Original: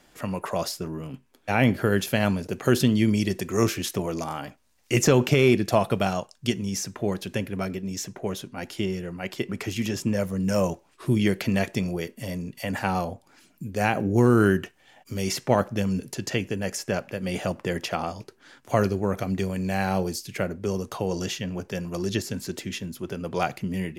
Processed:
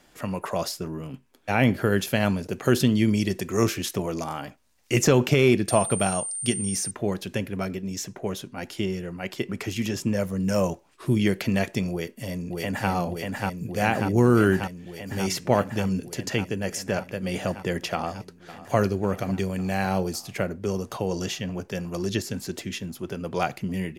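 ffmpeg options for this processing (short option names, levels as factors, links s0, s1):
-filter_complex "[0:a]asettb=1/sr,asplit=3[s0][s1][s2];[s0]atrim=end=5.684[s3];[s1]atrim=start=5.68:end=6.91,asetpts=PTS-STARTPTS,afade=t=in:d=0.004:c=qsin,afade=t=out:st=1.226:d=0.004:c=qsin,aeval=exprs='val(0)+0.0355*sin(2*PI*8900*n/s)':c=same[s4];[s2]atrim=start=6.906[s5];[s3][s4]acrossfade=d=0.004:c1=hsin:c2=qsin[s6];[s6][s5]acrossfade=d=0.004:c1=qsin:c2=hsin,asplit=2[s7][s8];[s8]afade=t=in:st=11.91:d=0.01,afade=t=out:st=12.9:d=0.01,aecho=0:1:590|1180|1770|2360|2950|3540|4130|4720|5310|5900|6490|7080:0.749894|0.599915|0.479932|0.383946|0.307157|0.245725|0.19658|0.157264|0.125811|0.100649|0.0805193|0.0644154[s9];[s7][s9]amix=inputs=2:normalize=0,asplit=2[s10][s11];[s11]afade=t=in:st=17.93:d=0.01,afade=t=out:st=18.76:d=0.01,aecho=0:1:550|1100|1650|2200|2750|3300|3850|4400|4950|5500:0.158489|0.118867|0.0891502|0.0668627|0.050147|0.0376103|0.0282077|0.0211558|0.0158668|0.0119001[s12];[s10][s12]amix=inputs=2:normalize=0"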